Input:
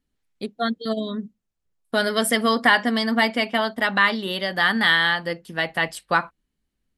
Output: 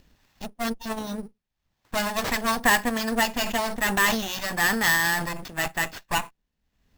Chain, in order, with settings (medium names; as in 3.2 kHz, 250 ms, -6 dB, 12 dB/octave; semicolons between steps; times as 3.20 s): comb filter that takes the minimum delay 1.1 ms; upward compressor, threshold -40 dBFS; sample-rate reducer 9.7 kHz, jitter 0%; 3.41–5.68 s: decay stretcher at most 58 dB/s; trim -1.5 dB